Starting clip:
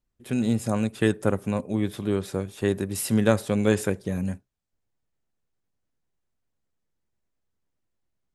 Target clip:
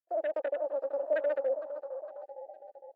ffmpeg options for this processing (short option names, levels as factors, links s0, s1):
-filter_complex "[0:a]asetrate=124362,aresample=44100,asplit=3[s0][s1][s2];[s0]bandpass=f=530:t=q:w=8,volume=1[s3];[s1]bandpass=f=1840:t=q:w=8,volume=0.501[s4];[s2]bandpass=f=2480:t=q:w=8,volume=0.355[s5];[s3][s4][s5]amix=inputs=3:normalize=0,aecho=1:1:459|918|1377|1836|2295|2754:0.316|0.174|0.0957|0.0526|0.0289|0.0159,afwtdn=0.00631,highpass=f=260:w=0.5412,highpass=f=260:w=1.3066,equalizer=f=750:t=o:w=0.96:g=12.5,volume=0.596"